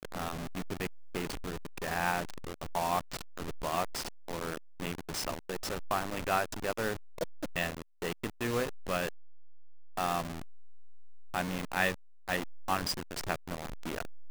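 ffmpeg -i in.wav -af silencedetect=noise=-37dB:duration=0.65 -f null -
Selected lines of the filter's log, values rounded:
silence_start: 9.09
silence_end: 9.97 | silence_duration: 0.89
silence_start: 10.42
silence_end: 11.34 | silence_duration: 0.92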